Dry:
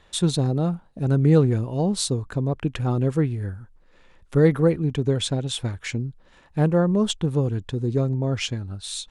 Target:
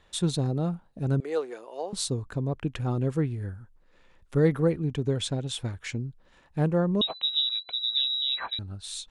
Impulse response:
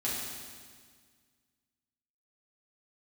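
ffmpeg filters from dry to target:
-filter_complex "[0:a]asettb=1/sr,asplit=3[a][b][c];[a]atrim=end=1.204[d];[b]atrim=start=1.2:end=1.93,asetpts=PTS-STARTPTS,afade=t=in:d=0.004:c=qsin,afade=t=out:st=0.726:d=0.004:c=qsin,highpass=f=450:w=0.5412,highpass=f=450:w=1.3066[e];[c]atrim=start=1.926[f];[d][e]acrossfade=d=0.004:c1=hsin:c2=qsin[g];[g][f]acrossfade=d=0.004:c1=qsin:c2=hsin,asettb=1/sr,asplit=3[h][i][j];[h]atrim=end=7.014[k];[i]atrim=start=7.01:end=8.59,asetpts=PTS-STARTPTS,afade=t=in:d=0.004:c=qsin,afade=t=out:st=1.576:d=0.004:c=qsin,lowpass=f=3.4k:t=q:w=0.5098,lowpass=f=3.4k:t=q:w=0.6013,lowpass=f=3.4k:t=q:w=0.9,lowpass=f=3.4k:t=q:w=2.563,afreqshift=-4000[l];[j]atrim=start=8.586[m];[k][l]acrossfade=d=0.004:c1=hsin:c2=qsin[n];[n][m]acrossfade=d=0.004:c1=qsin:c2=hsin,volume=-5dB"

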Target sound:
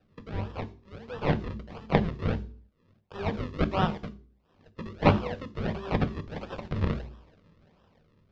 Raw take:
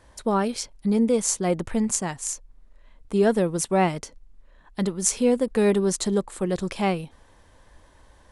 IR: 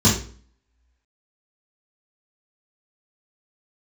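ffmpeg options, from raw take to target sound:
-filter_complex "[0:a]highpass=1.4k,acrusher=samples=40:mix=1:aa=0.000001:lfo=1:lforange=40:lforate=1.5,asplit=2[a][b];[1:a]atrim=start_sample=2205,afade=t=out:st=0.45:d=0.01,atrim=end_sample=20286,highshelf=f=9.2k:g=10[c];[b][c]afir=irnorm=-1:irlink=0,volume=-30.5dB[d];[a][d]amix=inputs=2:normalize=0,acrossover=split=3700[e][f];[f]acompressor=threshold=-51dB:ratio=4:attack=1:release=60[g];[e][g]amix=inputs=2:normalize=0,lowpass=f=4.8k:w=0.5412,lowpass=f=4.8k:w=1.3066,dynaudnorm=f=250:g=9:m=8dB,volume=-3dB"

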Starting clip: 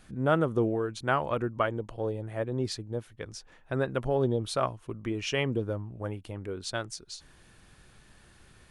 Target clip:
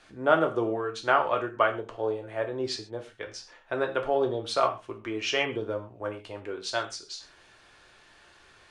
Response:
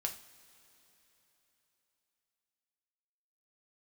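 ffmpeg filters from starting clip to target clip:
-filter_complex "[0:a]acrossover=split=350 7100:gain=0.158 1 0.1[a][b][c];[a][b][c]amix=inputs=3:normalize=0[d];[1:a]atrim=start_sample=2205,atrim=end_sample=6174[e];[d][e]afir=irnorm=-1:irlink=0,volume=4.5dB"

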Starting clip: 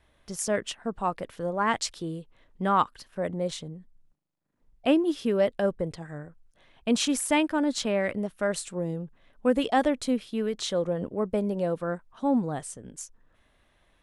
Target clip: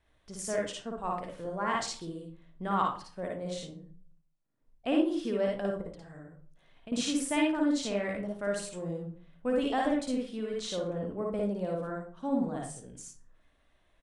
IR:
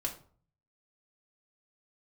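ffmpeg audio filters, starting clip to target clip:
-filter_complex "[0:a]asettb=1/sr,asplit=3[a][b][c];[a]atrim=end=5.814[d];[b]atrim=start=5.81:end=6.92,asetpts=PTS-STARTPTS,afade=t=in:d=0.004:c=qsin,afade=t=out:st=1.106:d=0.004:c=qsin,acompressor=threshold=-38dB:ratio=5[e];[c]atrim=start=6.916[f];[d][e]acrossfade=d=0.004:c1=hsin:c2=qsin[g];[g][f]acrossfade=d=0.004:c1=qsin:c2=hsin,asplit=2[h][i];[1:a]atrim=start_sample=2205,adelay=55[j];[i][j]afir=irnorm=-1:irlink=0,volume=-1dB[k];[h][k]amix=inputs=2:normalize=0,aresample=22050,aresample=44100,volume=-8.5dB"

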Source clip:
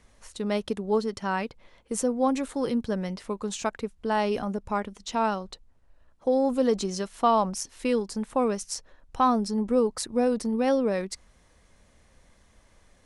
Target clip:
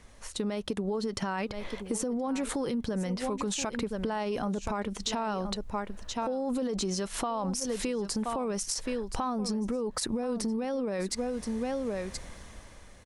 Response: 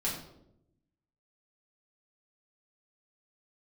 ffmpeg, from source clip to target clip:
-af "dynaudnorm=f=210:g=9:m=11.5dB,aecho=1:1:1024:0.141,alimiter=limit=-21dB:level=0:latency=1:release=70,acompressor=threshold=-33dB:ratio=6,volume=4.5dB"

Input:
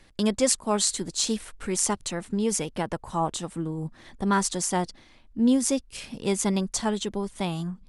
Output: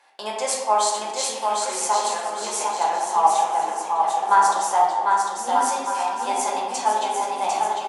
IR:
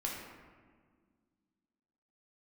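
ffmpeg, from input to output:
-filter_complex "[0:a]highpass=f=800:t=q:w=7.7,aecho=1:1:750|1238|1554|1760|1894:0.631|0.398|0.251|0.158|0.1[a];[1:a]atrim=start_sample=2205,asetrate=52920,aresample=44100[b];[a][b]afir=irnorm=-1:irlink=0"

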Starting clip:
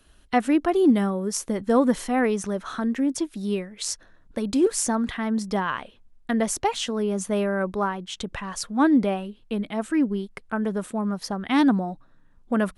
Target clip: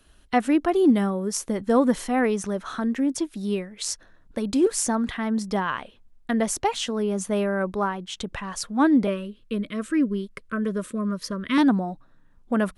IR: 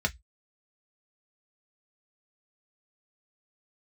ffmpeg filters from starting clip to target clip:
-filter_complex "[0:a]asettb=1/sr,asplit=3[a][b][c];[a]atrim=end=9.074[d];[b]atrim=start=9.07:end=11.58,asetpts=PTS-STARTPTS,afade=t=in:d=0.004:c=qsin,afade=t=out:st=2.506:d=0.004:c=qsin,asuperstop=centerf=790:order=12:qfactor=2.3[e];[c]atrim=start=11.576[f];[d][e]acrossfade=d=0.004:c1=hsin:c2=qsin[g];[g][f]acrossfade=d=0.004:c1=qsin:c2=hsin"

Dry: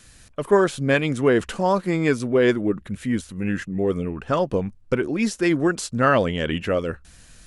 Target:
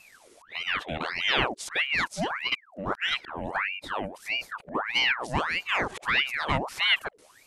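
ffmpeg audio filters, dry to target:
-af "areverse,aeval=exprs='val(0)*sin(2*PI*1500*n/s+1500*0.75/1.6*sin(2*PI*1.6*n/s))':c=same,volume=-4.5dB"

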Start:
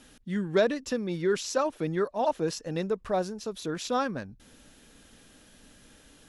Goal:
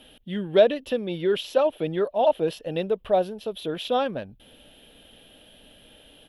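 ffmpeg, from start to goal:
-af "firequalizer=gain_entry='entry(260,0);entry(620,9);entry(1100,-3);entry(2100,0);entry(3100,13);entry(4500,-6);entry(6700,-17);entry(12000,7)':delay=0.05:min_phase=1"

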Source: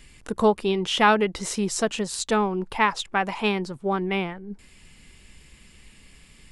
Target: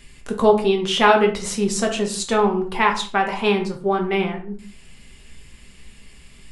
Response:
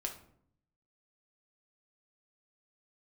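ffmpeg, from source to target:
-filter_complex "[1:a]atrim=start_sample=2205,afade=t=out:st=0.28:d=0.01,atrim=end_sample=12789,asetrate=48510,aresample=44100[a];[0:a][a]afir=irnorm=-1:irlink=0,volume=4.5dB"

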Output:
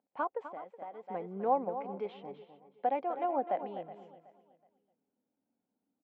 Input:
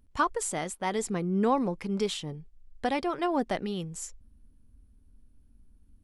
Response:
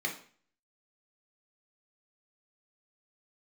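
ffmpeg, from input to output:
-filter_complex "[0:a]highpass=f=230:w=0.5412,highpass=f=230:w=1.3066,equalizer=f=230:t=q:w=4:g=-5,equalizer=f=360:t=q:w=4:g=-5,equalizer=f=540:t=q:w=4:g=6,equalizer=f=770:t=q:w=4:g=10,equalizer=f=1.2k:t=q:w=4:g=-5,equalizer=f=1.8k:t=q:w=4:g=-8,lowpass=f=2.2k:w=0.5412,lowpass=f=2.2k:w=1.3066,asplit=2[a][b];[b]aecho=0:1:254:0.282[c];[a][c]amix=inputs=2:normalize=0,asplit=3[d][e][f];[d]afade=t=out:st=0.47:d=0.02[g];[e]acompressor=threshold=-35dB:ratio=6,afade=t=in:st=0.47:d=0.02,afade=t=out:st=1.08:d=0.02[h];[f]afade=t=in:st=1.08:d=0.02[i];[g][h][i]amix=inputs=3:normalize=0,asplit=2[j][k];[k]aecho=0:1:372|744|1116:0.141|0.0424|0.0127[l];[j][l]amix=inputs=2:normalize=0,volume=-7.5dB"

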